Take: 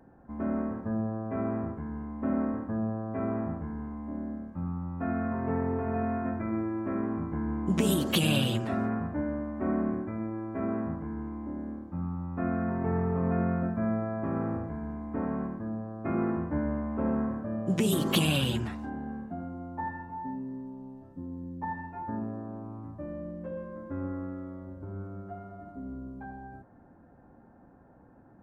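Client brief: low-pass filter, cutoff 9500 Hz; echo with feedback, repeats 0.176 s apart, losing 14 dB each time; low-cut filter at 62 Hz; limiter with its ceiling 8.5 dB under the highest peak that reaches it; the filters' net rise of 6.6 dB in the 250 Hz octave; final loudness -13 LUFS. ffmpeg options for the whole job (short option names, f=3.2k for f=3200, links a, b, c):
-af "highpass=62,lowpass=9.5k,equalizer=f=250:t=o:g=8,alimiter=limit=-17dB:level=0:latency=1,aecho=1:1:176|352:0.2|0.0399,volume=15dB"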